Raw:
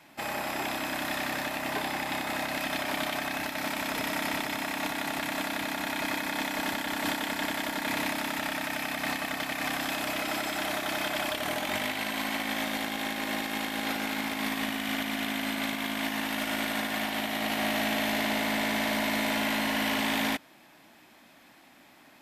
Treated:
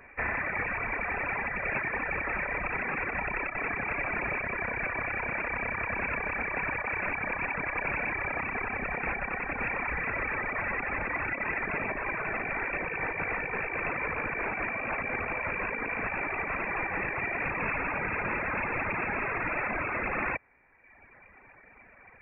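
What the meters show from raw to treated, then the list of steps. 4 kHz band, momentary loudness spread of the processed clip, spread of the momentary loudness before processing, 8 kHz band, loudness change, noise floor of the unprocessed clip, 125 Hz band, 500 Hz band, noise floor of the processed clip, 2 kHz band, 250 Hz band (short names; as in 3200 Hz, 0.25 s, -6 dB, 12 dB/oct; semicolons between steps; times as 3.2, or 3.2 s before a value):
under -30 dB, 1 LU, 4 LU, under -40 dB, -0.5 dB, -56 dBFS, +3.0 dB, -1.0 dB, -56 dBFS, +2.0 dB, -8.5 dB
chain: wrapped overs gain 24.5 dB; inverted band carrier 2600 Hz; reverb removal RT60 1.2 s; gain +5 dB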